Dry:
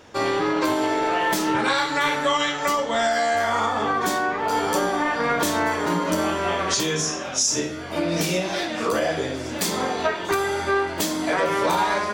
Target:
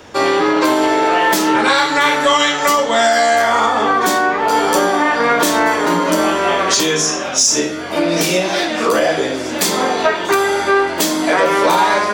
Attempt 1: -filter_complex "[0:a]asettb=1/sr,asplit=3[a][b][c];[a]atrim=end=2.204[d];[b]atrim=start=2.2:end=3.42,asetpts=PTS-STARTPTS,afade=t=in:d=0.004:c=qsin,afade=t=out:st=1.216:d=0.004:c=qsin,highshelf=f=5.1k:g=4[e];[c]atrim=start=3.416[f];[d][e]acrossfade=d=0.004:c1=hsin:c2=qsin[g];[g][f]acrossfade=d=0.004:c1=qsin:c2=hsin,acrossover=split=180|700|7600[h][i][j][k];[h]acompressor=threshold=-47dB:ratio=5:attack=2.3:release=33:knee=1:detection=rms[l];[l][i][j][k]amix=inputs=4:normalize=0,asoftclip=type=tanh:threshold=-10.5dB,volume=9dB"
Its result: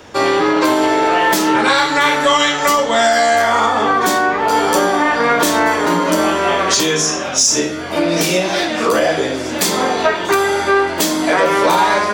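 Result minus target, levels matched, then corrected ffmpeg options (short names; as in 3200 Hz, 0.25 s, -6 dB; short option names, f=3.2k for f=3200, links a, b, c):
compressor: peak gain reduction -6 dB
-filter_complex "[0:a]asettb=1/sr,asplit=3[a][b][c];[a]atrim=end=2.204[d];[b]atrim=start=2.2:end=3.42,asetpts=PTS-STARTPTS,afade=t=in:d=0.004:c=qsin,afade=t=out:st=1.216:d=0.004:c=qsin,highshelf=f=5.1k:g=4[e];[c]atrim=start=3.416[f];[d][e]acrossfade=d=0.004:c1=hsin:c2=qsin[g];[g][f]acrossfade=d=0.004:c1=qsin:c2=hsin,acrossover=split=180|700|7600[h][i][j][k];[h]acompressor=threshold=-54.5dB:ratio=5:attack=2.3:release=33:knee=1:detection=rms[l];[l][i][j][k]amix=inputs=4:normalize=0,asoftclip=type=tanh:threshold=-10.5dB,volume=9dB"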